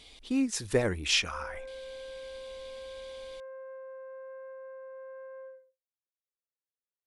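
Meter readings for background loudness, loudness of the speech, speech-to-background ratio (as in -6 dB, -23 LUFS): -45.0 LUFS, -29.0 LUFS, 16.0 dB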